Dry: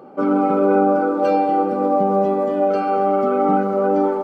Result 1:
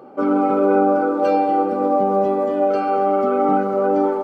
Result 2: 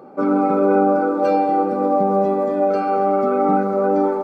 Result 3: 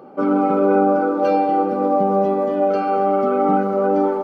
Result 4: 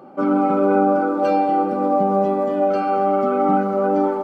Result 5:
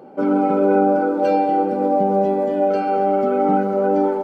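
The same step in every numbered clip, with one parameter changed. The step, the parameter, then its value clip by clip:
band-stop, frequency: 180 Hz, 3 kHz, 7.7 kHz, 450 Hz, 1.2 kHz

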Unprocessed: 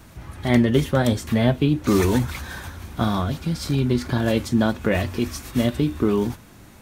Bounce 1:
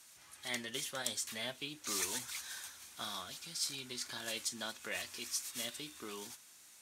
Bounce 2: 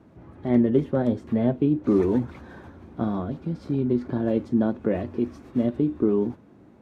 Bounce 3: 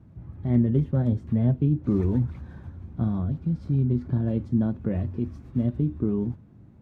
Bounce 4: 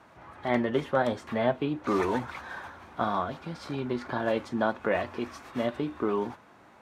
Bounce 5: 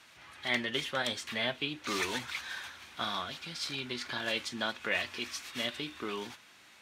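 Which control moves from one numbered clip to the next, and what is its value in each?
band-pass filter, frequency: 7.7 kHz, 330 Hz, 130 Hz, 920 Hz, 3 kHz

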